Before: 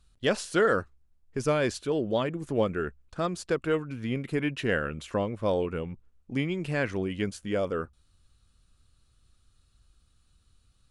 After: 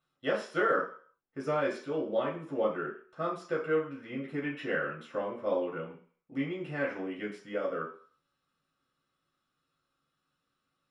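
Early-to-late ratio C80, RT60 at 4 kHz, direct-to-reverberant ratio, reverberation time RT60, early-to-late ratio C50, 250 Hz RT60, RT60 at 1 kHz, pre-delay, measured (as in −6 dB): 11.0 dB, 0.55 s, −5.5 dB, 0.50 s, 7.0 dB, 0.40 s, 0.50 s, 3 ms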